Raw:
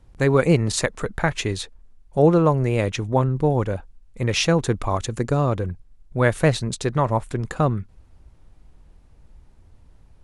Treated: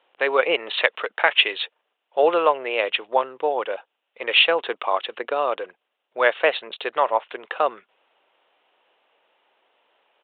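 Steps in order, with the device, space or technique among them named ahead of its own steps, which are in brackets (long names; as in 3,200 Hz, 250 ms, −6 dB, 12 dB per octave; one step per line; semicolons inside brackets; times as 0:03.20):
0:00.57–0:02.58: dynamic equaliser 2,900 Hz, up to +5 dB, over −37 dBFS, Q 0.79
musical greeting card (downsampling to 8,000 Hz; high-pass filter 500 Hz 24 dB per octave; parametric band 2,900 Hz +9 dB 0.46 octaves)
level +3 dB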